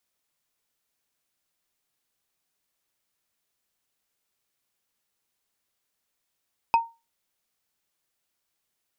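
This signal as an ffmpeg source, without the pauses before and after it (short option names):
-f lavfi -i "aevalsrc='0.237*pow(10,-3*t/0.26)*sin(2*PI*921*t)+0.0794*pow(10,-3*t/0.077)*sin(2*PI*2539.2*t)+0.0266*pow(10,-3*t/0.034)*sin(2*PI*4977.1*t)+0.00891*pow(10,-3*t/0.019)*sin(2*PI*8227.3*t)+0.00299*pow(10,-3*t/0.012)*sin(2*PI*12286.1*t)':d=0.45:s=44100"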